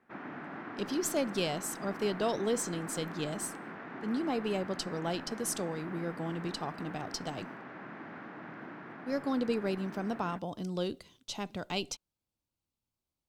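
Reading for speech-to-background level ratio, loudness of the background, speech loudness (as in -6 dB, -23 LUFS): 9.0 dB, -44.5 LUFS, -35.5 LUFS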